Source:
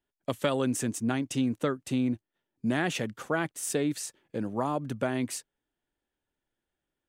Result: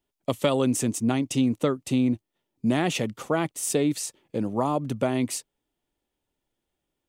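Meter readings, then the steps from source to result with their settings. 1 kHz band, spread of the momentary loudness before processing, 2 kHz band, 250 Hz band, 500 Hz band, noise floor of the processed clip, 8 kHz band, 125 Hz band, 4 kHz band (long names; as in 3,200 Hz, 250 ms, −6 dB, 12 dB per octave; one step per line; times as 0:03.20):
+4.0 dB, 8 LU, 0.0 dB, +5.0 dB, +5.0 dB, −83 dBFS, +5.0 dB, +5.0 dB, +4.5 dB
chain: parametric band 1,600 Hz −10 dB 0.39 octaves
level +5 dB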